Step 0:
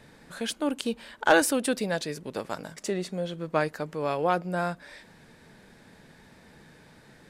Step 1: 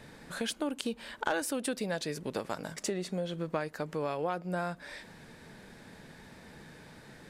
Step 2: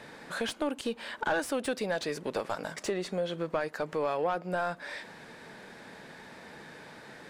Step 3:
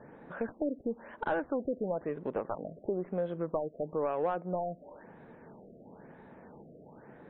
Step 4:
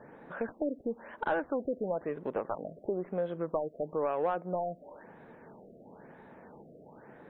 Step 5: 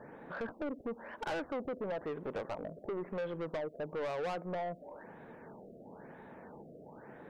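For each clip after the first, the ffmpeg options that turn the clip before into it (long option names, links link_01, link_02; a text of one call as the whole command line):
ffmpeg -i in.wav -af "acompressor=threshold=-33dB:ratio=4,volume=2dB" out.wav
ffmpeg -i in.wav -filter_complex "[0:a]highshelf=frequency=3300:gain=9,asplit=2[link_01][link_02];[link_02]highpass=frequency=720:poles=1,volume=22dB,asoftclip=type=tanh:threshold=-8dB[link_03];[link_01][link_03]amix=inputs=2:normalize=0,lowpass=frequency=1000:poles=1,volume=-6dB,volume=-6dB" out.wav
ffmpeg -i in.wav -af "adynamicsmooth=sensitivity=0.5:basefreq=1000,afftfilt=real='re*lt(b*sr/1024,700*pow(4200/700,0.5+0.5*sin(2*PI*1*pts/sr)))':imag='im*lt(b*sr/1024,700*pow(4200/700,0.5+0.5*sin(2*PI*1*pts/sr)))':win_size=1024:overlap=0.75" out.wav
ffmpeg -i in.wav -af "lowshelf=frequency=320:gain=-5,volume=2dB" out.wav
ffmpeg -i in.wav -af "asoftclip=type=tanh:threshold=-34.5dB,volume=1dB" out.wav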